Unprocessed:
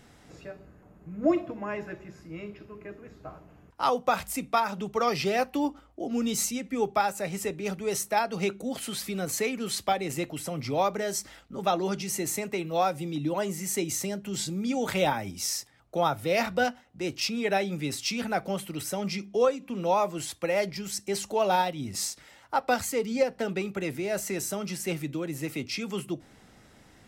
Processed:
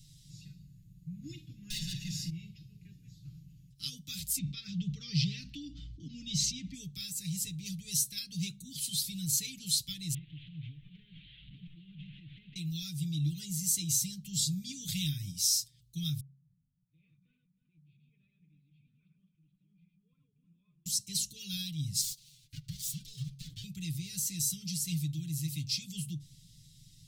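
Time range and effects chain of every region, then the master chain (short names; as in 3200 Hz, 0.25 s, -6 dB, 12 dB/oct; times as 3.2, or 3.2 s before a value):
1.7–2.3 overdrive pedal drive 29 dB, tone 5900 Hz, clips at -22.5 dBFS + comb 1.1 ms, depth 57%
4.38–6.74 air absorption 190 m + fast leveller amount 50%
10.14–12.56 delta modulation 16 kbps, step -38.5 dBFS + tilt +1.5 dB/oct + compressor 10:1, threshold -38 dBFS
16.2–20.86 regenerating reverse delay 0.157 s, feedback 41%, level -3 dB + vocal tract filter a + bands offset in time lows, highs 0.68 s, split 160 Hz
22.01–23.64 minimum comb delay 4 ms + ring modulator 670 Hz + compressor 10:1, threshold -32 dBFS
whole clip: Chebyshev band-stop 150–3800 Hz, order 3; comb 6.7 ms, depth 79%; de-hum 68.04 Hz, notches 2; gain +1.5 dB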